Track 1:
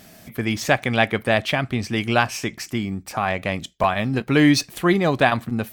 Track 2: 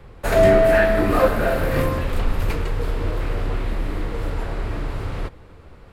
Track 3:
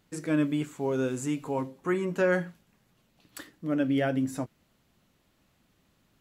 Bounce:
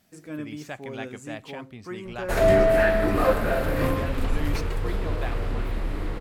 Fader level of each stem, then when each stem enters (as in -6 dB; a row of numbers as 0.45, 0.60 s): -19.0, -4.0, -9.0 dB; 0.00, 2.05, 0.00 s